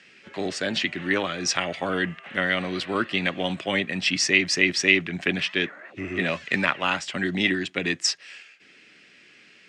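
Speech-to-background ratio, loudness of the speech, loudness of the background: 19.5 dB, -24.5 LUFS, -44.0 LUFS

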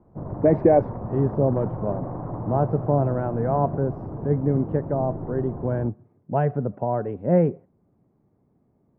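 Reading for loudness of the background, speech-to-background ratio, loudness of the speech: -33.0 LUFS, 9.0 dB, -24.0 LUFS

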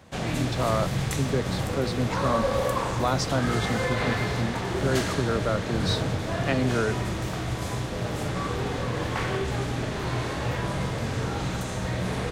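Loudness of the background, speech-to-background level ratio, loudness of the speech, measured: -28.5 LUFS, -1.0 dB, -29.5 LUFS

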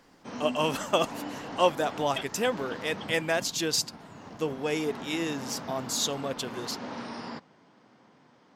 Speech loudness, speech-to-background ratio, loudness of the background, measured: -29.5 LUFS, 11.0 dB, -40.5 LUFS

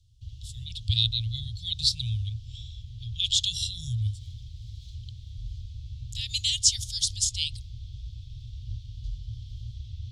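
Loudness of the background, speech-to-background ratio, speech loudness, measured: -41.5 LUFS, 14.5 dB, -27.0 LUFS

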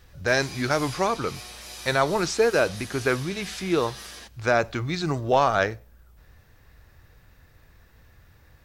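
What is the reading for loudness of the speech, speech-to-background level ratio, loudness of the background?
-25.0 LUFS, 14.0 dB, -39.0 LUFS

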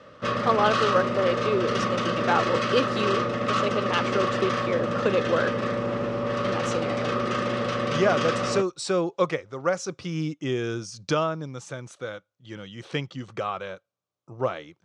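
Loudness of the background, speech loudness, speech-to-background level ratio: -26.5 LUFS, -28.0 LUFS, -1.5 dB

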